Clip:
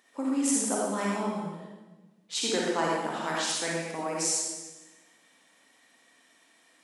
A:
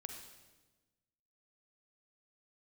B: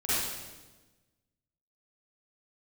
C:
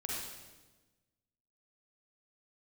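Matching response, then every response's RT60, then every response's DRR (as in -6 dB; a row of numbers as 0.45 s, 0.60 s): C; 1.2 s, 1.2 s, 1.2 s; 4.0 dB, -13.0 dB, -4.5 dB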